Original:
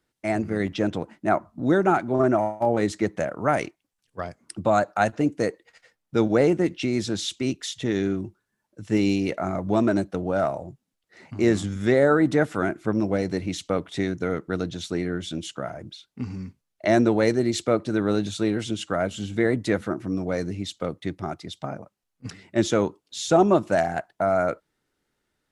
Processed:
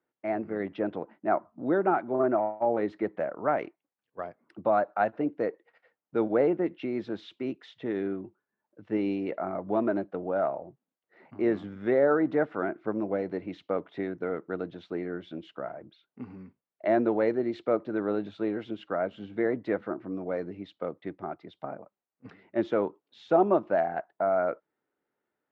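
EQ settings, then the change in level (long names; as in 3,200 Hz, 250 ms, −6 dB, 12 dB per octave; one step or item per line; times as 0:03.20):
resonant band-pass 490 Hz, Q 0.6
high-frequency loss of the air 370 metres
spectral tilt +2.5 dB per octave
0.0 dB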